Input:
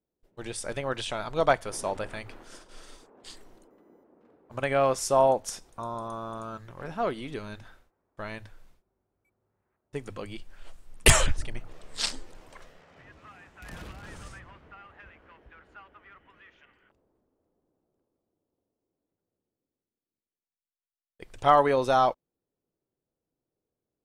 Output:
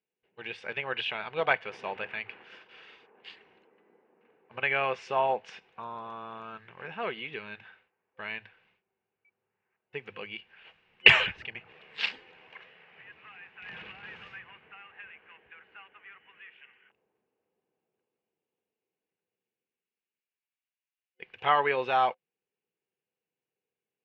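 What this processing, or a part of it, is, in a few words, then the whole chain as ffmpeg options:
kitchen radio: -af "highpass=190,equalizer=frequency=260:width_type=q:width=4:gain=-7,equalizer=frequency=650:width_type=q:width=4:gain=7,equalizer=frequency=3200:width_type=q:width=4:gain=5,lowpass=frequency=3700:width=0.5412,lowpass=frequency=3700:width=1.3066,superequalizer=6b=0.562:8b=0.316:11b=2.24:12b=3.55,volume=-3.5dB"

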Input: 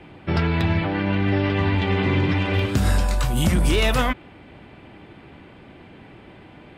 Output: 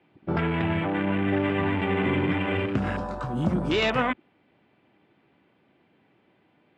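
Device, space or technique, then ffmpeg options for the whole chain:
over-cleaned archive recording: -af "highpass=150,lowpass=5400,afwtdn=0.0355,volume=-1.5dB"

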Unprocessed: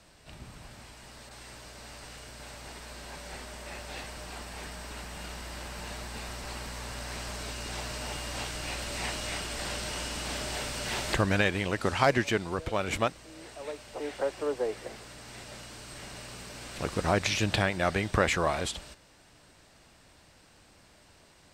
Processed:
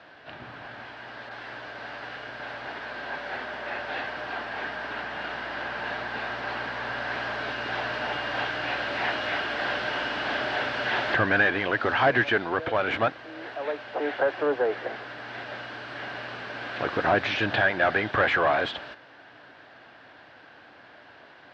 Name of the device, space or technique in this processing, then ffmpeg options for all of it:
overdrive pedal into a guitar cabinet: -filter_complex "[0:a]asplit=2[link_01][link_02];[link_02]highpass=frequency=720:poles=1,volume=23dB,asoftclip=type=tanh:threshold=-8dB[link_03];[link_01][link_03]amix=inputs=2:normalize=0,lowpass=frequency=1100:poles=1,volume=-6dB,highpass=83,equalizer=frequency=120:width_type=q:width=4:gain=5,equalizer=frequency=180:width_type=q:width=4:gain=-5,equalizer=frequency=280:width_type=q:width=4:gain=4,equalizer=frequency=720:width_type=q:width=4:gain=4,equalizer=frequency=1600:width_type=q:width=4:gain=10,equalizer=frequency=3200:width_type=q:width=4:gain=4,lowpass=frequency=4500:width=0.5412,lowpass=frequency=4500:width=1.3066,volume=-4.5dB"

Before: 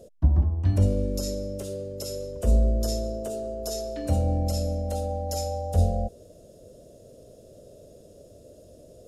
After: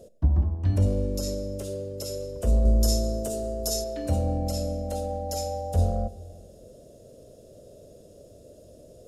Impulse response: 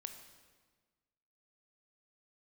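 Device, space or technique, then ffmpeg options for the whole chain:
saturated reverb return: -filter_complex "[0:a]asplit=2[link_01][link_02];[1:a]atrim=start_sample=2205[link_03];[link_02][link_03]afir=irnorm=-1:irlink=0,asoftclip=type=tanh:threshold=-23dB,volume=-0.5dB[link_04];[link_01][link_04]amix=inputs=2:normalize=0,asettb=1/sr,asplit=3[link_05][link_06][link_07];[link_05]atrim=end=2.654[link_08];[link_06]atrim=start=2.65:end=3.84,asetpts=PTS-STARTPTS,afade=type=in:duration=0.004:curve=qsin,afade=type=out:start_time=1.186:duration=0.004:curve=qsin,bass=frequency=250:gain=6,treble=frequency=4000:gain=8[link_09];[link_07]atrim=start=3.836[link_10];[link_08][link_09]acrossfade=duration=0.004:curve1=hsin:curve2=qsin[link_11];[link_11][link_10]acrossfade=duration=0.004:curve1=qsin:curve2=hsin,volume=-4dB"

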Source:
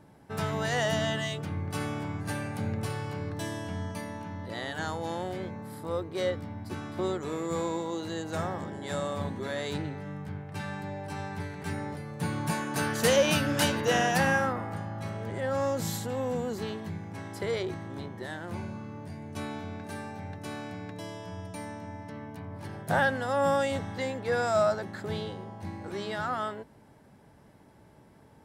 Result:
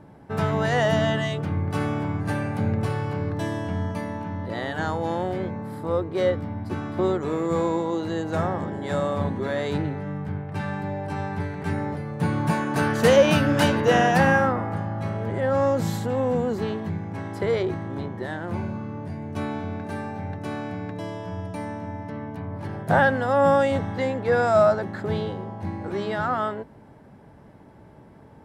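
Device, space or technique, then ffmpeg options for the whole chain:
through cloth: -af "highshelf=frequency=3100:gain=-13,volume=8dB"

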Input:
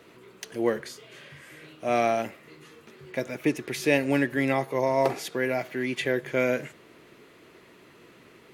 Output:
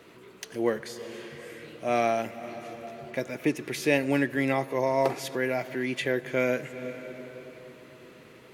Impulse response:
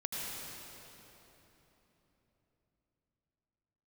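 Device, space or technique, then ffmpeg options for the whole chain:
ducked reverb: -filter_complex "[0:a]asplit=3[link_01][link_02][link_03];[1:a]atrim=start_sample=2205[link_04];[link_02][link_04]afir=irnorm=-1:irlink=0[link_05];[link_03]apad=whole_len=376244[link_06];[link_05][link_06]sidechaincompress=threshold=-45dB:ratio=3:attack=16:release=181,volume=-9dB[link_07];[link_01][link_07]amix=inputs=2:normalize=0,volume=-1.5dB"

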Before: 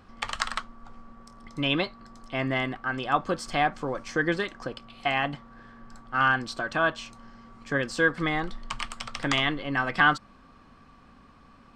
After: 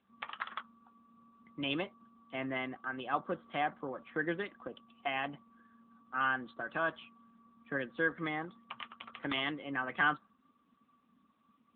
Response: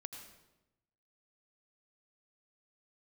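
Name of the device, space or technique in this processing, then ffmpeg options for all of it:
mobile call with aggressive noise cancelling: -af "highpass=frequency=160:width=0.5412,highpass=frequency=160:width=1.3066,afftdn=noise_reduction=13:noise_floor=-44,volume=-8.5dB" -ar 8000 -c:a libopencore_amrnb -b:a 10200

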